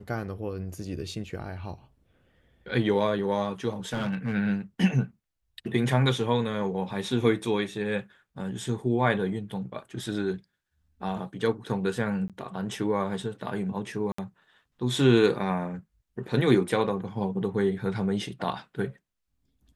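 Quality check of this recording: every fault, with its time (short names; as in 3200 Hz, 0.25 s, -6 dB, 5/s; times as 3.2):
3.93–4.34 clipped -24 dBFS
12.28–12.3 gap 17 ms
14.12–14.18 gap 64 ms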